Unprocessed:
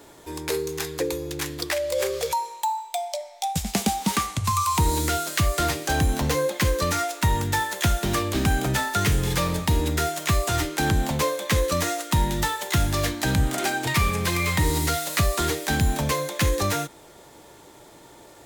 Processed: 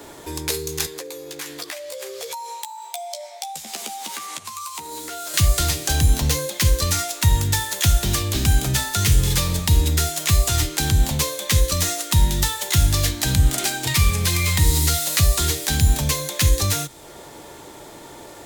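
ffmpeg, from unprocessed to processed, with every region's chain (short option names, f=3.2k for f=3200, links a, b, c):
-filter_complex "[0:a]asettb=1/sr,asplit=3[a][b][c];[a]atrim=end=0.864[d];[b]atrim=start=0.86:end=5.34,asetpts=PTS-STARTPTS,afade=t=in:d=0.004:c=qsin,afade=t=out:st=4.476:d=0.004:c=qsin,acompressor=threshold=-34dB:ratio=10:attack=3.2:release=140:knee=1:detection=peak,highpass=370,asplit=2[e][f];[f]adelay=13,volume=-5.5dB[g];[e][g]amix=inputs=2:normalize=0,atrim=end_sample=197568[h];[c]atrim=start=5.336[i];[d][h]acrossfade=d=0.004:c1=hsin:c2=qsin[j];[j][i]acrossfade=d=0.004:c1=qsin:c2=hsin,bandreject=f=60:t=h:w=6,bandreject=f=120:t=h:w=6,bandreject=f=180:t=h:w=6,acrossover=split=130|3000[k][l][m];[l]acompressor=threshold=-42dB:ratio=2.5[n];[k][n][m]amix=inputs=3:normalize=0,volume=8dB"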